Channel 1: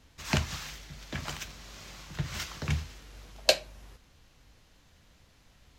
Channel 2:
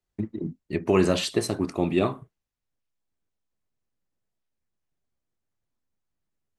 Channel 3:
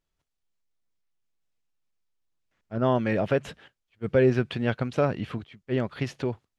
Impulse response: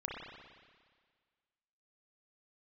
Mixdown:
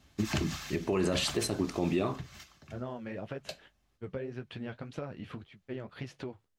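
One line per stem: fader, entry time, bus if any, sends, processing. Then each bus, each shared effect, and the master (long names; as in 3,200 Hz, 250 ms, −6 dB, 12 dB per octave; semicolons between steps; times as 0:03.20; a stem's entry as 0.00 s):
+1.0 dB, 0.00 s, no send, harmonic and percussive parts rebalanced harmonic −4 dB; notch comb filter 480 Hz; automatic ducking −20 dB, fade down 0.85 s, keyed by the third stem
−1.5 dB, 0.00 s, no send, no processing
−2.0 dB, 0.00 s, no send, downward expander −53 dBFS; downward compressor 8 to 1, threshold −30 dBFS, peak gain reduction 14.5 dB; flanger 1.8 Hz, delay 5.9 ms, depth 9.1 ms, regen −42%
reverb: not used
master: brickwall limiter −19.5 dBFS, peak gain reduction 9.5 dB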